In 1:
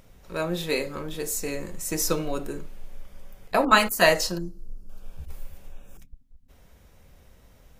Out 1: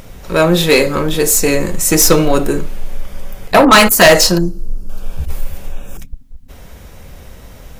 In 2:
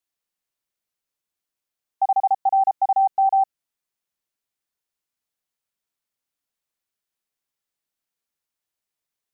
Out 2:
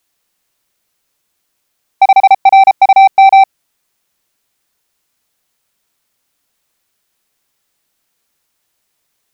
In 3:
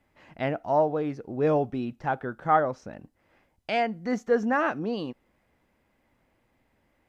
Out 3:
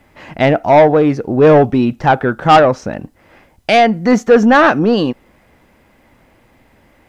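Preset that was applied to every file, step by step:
soft clip -20.5 dBFS; normalise peaks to -2 dBFS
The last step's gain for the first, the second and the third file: +18.5, +18.5, +18.5 dB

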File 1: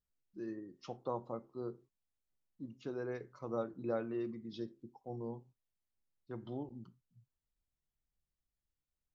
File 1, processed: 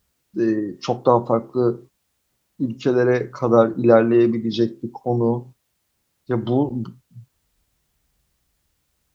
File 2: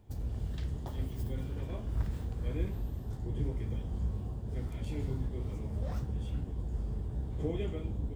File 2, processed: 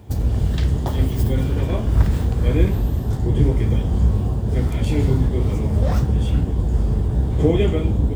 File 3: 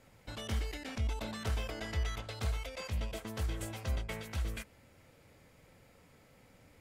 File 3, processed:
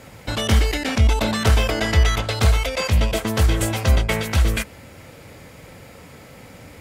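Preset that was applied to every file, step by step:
HPF 43 Hz; match loudness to -20 LUFS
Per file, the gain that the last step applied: +23.5, +18.0, +19.5 dB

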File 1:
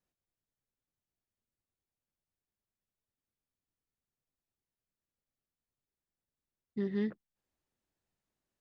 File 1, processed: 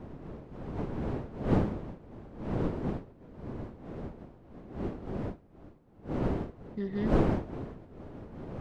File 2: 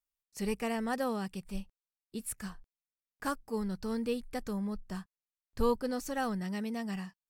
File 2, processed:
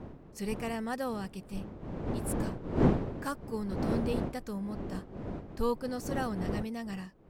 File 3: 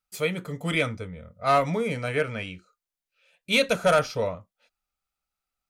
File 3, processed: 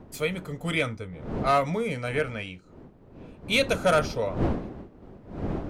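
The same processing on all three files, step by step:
wind noise 340 Hz -34 dBFS; normalise peaks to -12 dBFS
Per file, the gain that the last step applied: -0.5, -1.5, -1.5 dB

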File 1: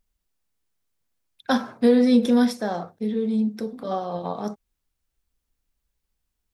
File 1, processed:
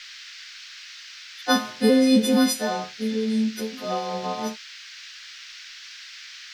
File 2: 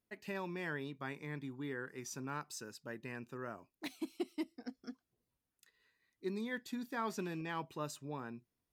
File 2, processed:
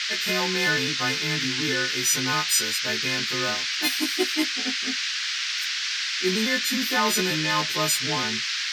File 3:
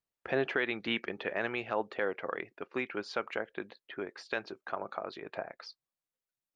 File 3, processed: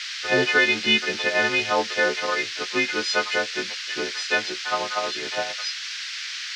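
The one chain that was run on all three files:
frequency quantiser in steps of 3 st; band noise 1500–5600 Hz -42 dBFS; match loudness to -23 LUFS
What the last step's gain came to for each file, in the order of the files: 0.0, +14.0, +9.0 dB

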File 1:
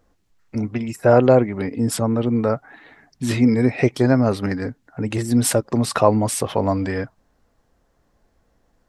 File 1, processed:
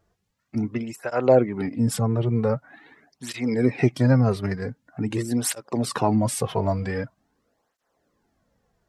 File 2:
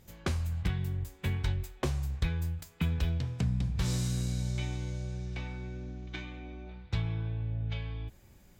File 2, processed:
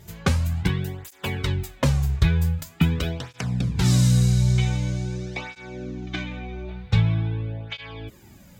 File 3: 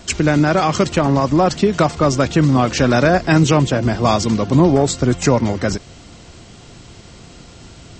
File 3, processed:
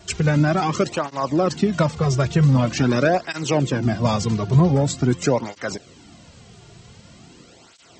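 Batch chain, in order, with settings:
dynamic EQ 130 Hz, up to +5 dB, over -33 dBFS, Q 2.2; tape flanging out of phase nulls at 0.45 Hz, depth 4 ms; normalise peaks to -6 dBFS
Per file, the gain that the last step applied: -1.5, +13.5, -3.0 dB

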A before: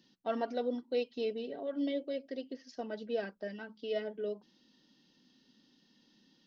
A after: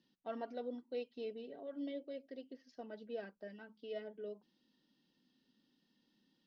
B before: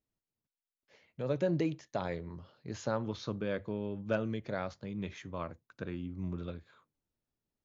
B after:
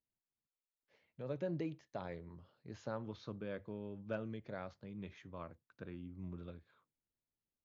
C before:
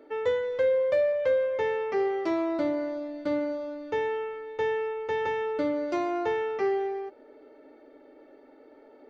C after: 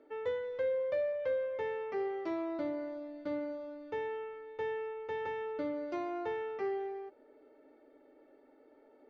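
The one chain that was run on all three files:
air absorption 100 m; gain -8.5 dB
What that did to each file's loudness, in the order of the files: -9.0, -8.5, -9.0 LU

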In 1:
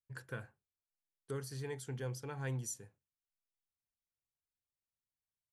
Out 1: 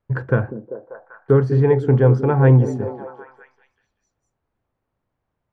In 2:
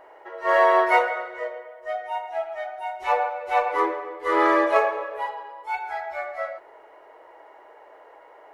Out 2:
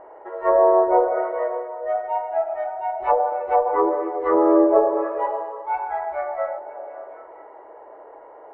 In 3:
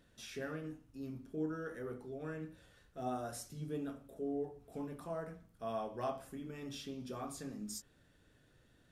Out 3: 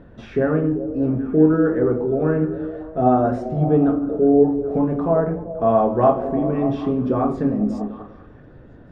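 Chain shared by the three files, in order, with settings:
LPF 1000 Hz 12 dB/oct; treble ducked by the level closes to 710 Hz, closed at -19.5 dBFS; on a send: delay with a stepping band-pass 0.195 s, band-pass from 270 Hz, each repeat 0.7 oct, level -6 dB; on the sum: normalise peaks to -3 dBFS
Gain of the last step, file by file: +27.0, +6.5, +24.0 dB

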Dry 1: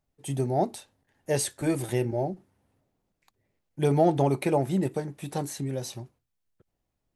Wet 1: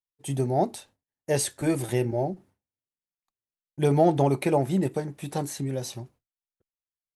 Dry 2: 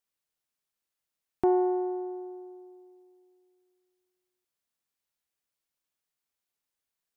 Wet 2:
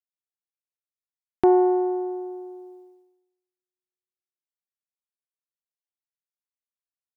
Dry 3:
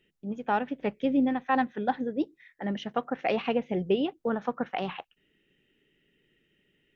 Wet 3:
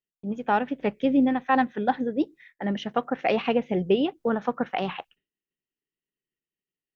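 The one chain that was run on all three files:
expander -51 dBFS; normalise peaks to -9 dBFS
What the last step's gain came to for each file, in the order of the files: +1.5, +7.0, +4.0 dB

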